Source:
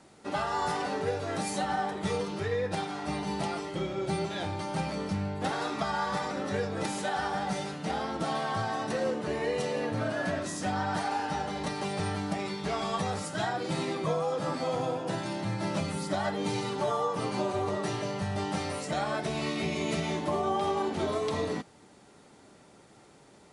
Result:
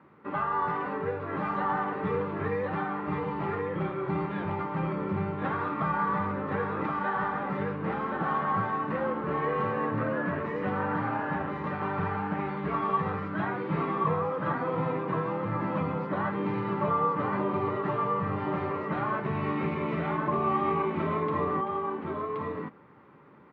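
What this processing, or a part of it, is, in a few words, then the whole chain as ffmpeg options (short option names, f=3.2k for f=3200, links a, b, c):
bass cabinet: -af "highpass=88,equalizer=f=150:t=q:w=4:g=3,equalizer=f=700:t=q:w=4:g=-10,equalizer=f=1.1k:t=q:w=4:g=9,lowpass=f=2.2k:w=0.5412,lowpass=f=2.2k:w=1.3066,aecho=1:1:1074:0.708"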